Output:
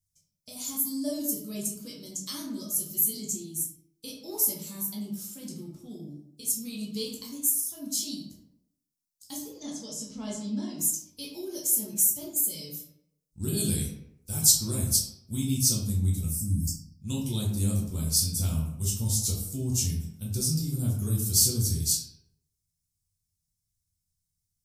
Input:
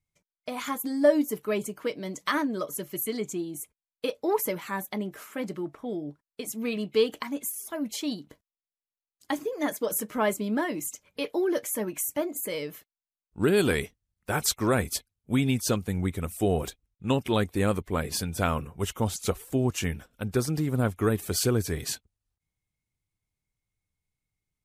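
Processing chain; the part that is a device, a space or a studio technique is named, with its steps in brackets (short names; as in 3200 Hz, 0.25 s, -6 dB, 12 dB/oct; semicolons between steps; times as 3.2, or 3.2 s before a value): 9.5–10.79 LPF 6200 Hz 24 dB/oct; 16.28–16.96 spectral delete 320–4400 Hz; EQ curve 170 Hz 0 dB, 430 Hz -18 dB, 790 Hz -20 dB, 1900 Hz -25 dB, 5400 Hz +10 dB; bathroom (reverb RT60 0.80 s, pre-delay 8 ms, DRR -4.5 dB); gain -4 dB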